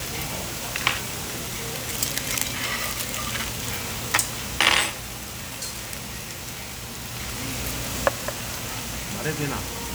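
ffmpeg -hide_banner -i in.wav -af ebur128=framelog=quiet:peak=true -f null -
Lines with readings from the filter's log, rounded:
Integrated loudness:
  I:         -26.3 LUFS
  Threshold: -36.3 LUFS
Loudness range:
  LRA:         5.7 LU
  Threshold: -46.0 LUFS
  LRA low:   -29.4 LUFS
  LRA high:  -23.7 LUFS
True peak:
  Peak:       -1.8 dBFS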